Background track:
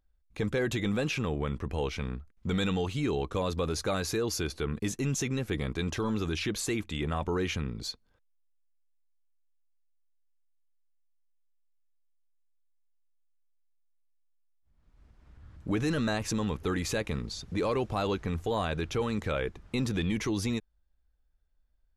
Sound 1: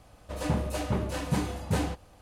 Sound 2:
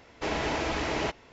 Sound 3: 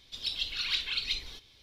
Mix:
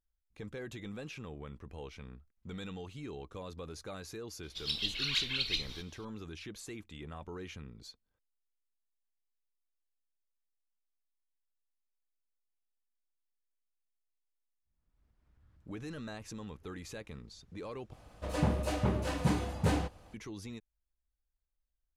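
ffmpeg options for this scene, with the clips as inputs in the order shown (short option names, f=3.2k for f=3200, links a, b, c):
-filter_complex "[0:a]volume=-14dB[a];[1:a]highshelf=f=8.8k:g=-7.5[b];[a]asplit=2[c][d];[c]atrim=end=17.934[e];[b]atrim=end=2.21,asetpts=PTS-STARTPTS,volume=-1.5dB[f];[d]atrim=start=20.136[g];[3:a]atrim=end=1.62,asetpts=PTS-STARTPTS,volume=-1.5dB,afade=t=in:d=0.004:c=hsin,afade=t=out:st=1.616:d=0.004:c=hsin,adelay=4430[h];[e][f]acrossfade=d=0.004:c1=hsin:c2=hsin[i];[i][g]acrossfade=d=0.004:c1=hsin:c2=hsin[j];[j][h]amix=inputs=2:normalize=0"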